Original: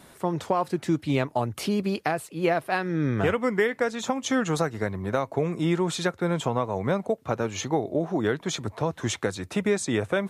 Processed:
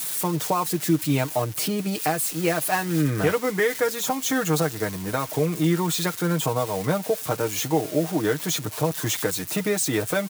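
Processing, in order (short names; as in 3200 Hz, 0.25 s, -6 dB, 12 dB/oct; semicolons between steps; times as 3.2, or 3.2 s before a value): switching spikes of -23 dBFS; comb 6.5 ms, depth 63%; 2.22–3.01 modulation noise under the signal 15 dB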